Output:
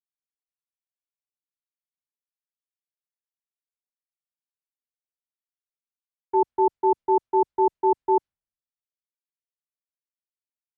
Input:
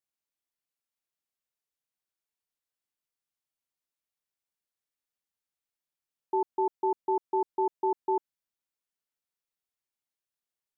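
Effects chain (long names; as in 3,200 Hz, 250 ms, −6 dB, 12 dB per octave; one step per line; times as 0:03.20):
low-pass that shuts in the quiet parts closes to 470 Hz, open at −23.5 dBFS
multiband upward and downward expander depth 100%
level +7.5 dB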